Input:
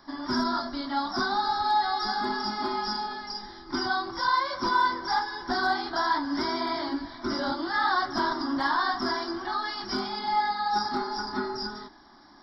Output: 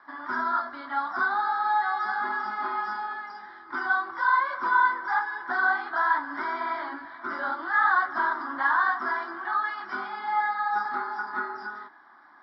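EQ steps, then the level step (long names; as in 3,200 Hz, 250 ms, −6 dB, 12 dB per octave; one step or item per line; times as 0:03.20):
resonant band-pass 1,500 Hz, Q 1.9
high-frequency loss of the air 310 metres
+8.5 dB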